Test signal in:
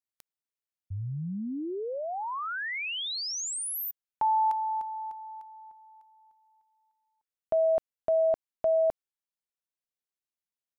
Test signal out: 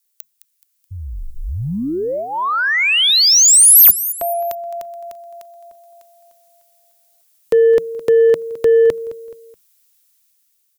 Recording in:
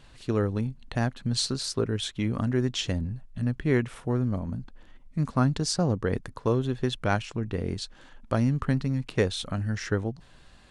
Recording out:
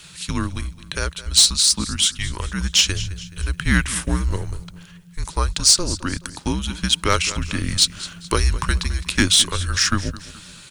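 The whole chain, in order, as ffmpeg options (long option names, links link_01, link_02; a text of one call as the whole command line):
ffmpeg -i in.wav -filter_complex "[0:a]crystalizer=i=10:c=0,asplit=2[link_01][link_02];[link_02]aecho=0:1:213|426|639:0.133|0.0533|0.0213[link_03];[link_01][link_03]amix=inputs=2:normalize=0,dynaudnorm=framelen=110:gausssize=21:maxgain=10dB,equalizer=frequency=940:width_type=o:width=0.24:gain=-10.5,asplit=2[link_04][link_05];[link_05]acontrast=81,volume=2dB[link_06];[link_04][link_06]amix=inputs=2:normalize=0,afreqshift=-190,volume=-9dB" out.wav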